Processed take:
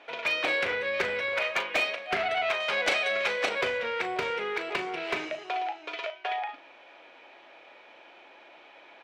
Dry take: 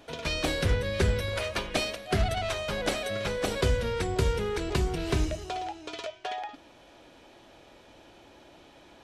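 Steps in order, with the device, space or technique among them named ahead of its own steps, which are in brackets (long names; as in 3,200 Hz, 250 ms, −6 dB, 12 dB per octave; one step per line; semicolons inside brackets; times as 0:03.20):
0:04.30–0:05.97: high-pass filter 110 Hz 24 dB per octave
megaphone (band-pass filter 590–2,800 Hz; parametric band 2,300 Hz +7.5 dB 0.46 octaves; hard clipping −23.5 dBFS, distortion −20 dB; double-tracking delay 38 ms −11 dB)
0:02.60–0:03.49: parametric band 7,000 Hz +7.5 dB 2.2 octaves
level +3.5 dB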